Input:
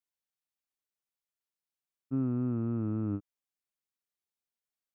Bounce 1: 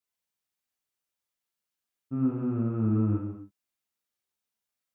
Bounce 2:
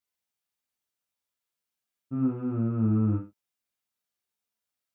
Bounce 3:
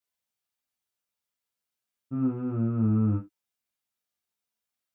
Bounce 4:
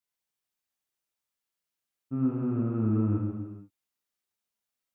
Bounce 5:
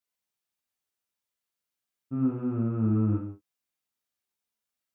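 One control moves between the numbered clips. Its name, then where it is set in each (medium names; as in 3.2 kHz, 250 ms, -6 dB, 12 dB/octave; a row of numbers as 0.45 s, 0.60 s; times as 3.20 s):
gated-style reverb, gate: 320 ms, 140 ms, 100 ms, 510 ms, 220 ms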